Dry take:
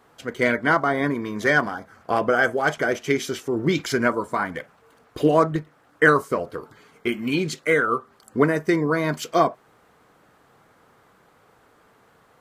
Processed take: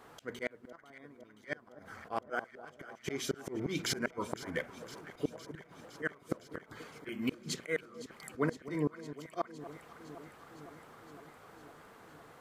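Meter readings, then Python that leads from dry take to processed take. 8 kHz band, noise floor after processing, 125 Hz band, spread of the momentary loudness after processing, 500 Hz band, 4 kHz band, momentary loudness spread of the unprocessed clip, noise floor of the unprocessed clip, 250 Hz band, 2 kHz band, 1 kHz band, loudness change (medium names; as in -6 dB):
-7.5 dB, -60 dBFS, -15.0 dB, 18 LU, -17.5 dB, -10.0 dB, 11 LU, -58 dBFS, -15.0 dB, -19.0 dB, -20.0 dB, -17.5 dB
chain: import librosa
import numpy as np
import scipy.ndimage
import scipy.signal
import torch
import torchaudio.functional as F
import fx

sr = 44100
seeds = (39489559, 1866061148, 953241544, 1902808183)

y = fx.hum_notches(x, sr, base_hz=60, count=4)
y = fx.auto_swell(y, sr, attack_ms=387.0)
y = fx.gate_flip(y, sr, shuts_db=-21.0, range_db=-33)
y = fx.echo_alternate(y, sr, ms=255, hz=1100.0, feedback_pct=85, wet_db=-13.5)
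y = y * librosa.db_to_amplitude(1.0)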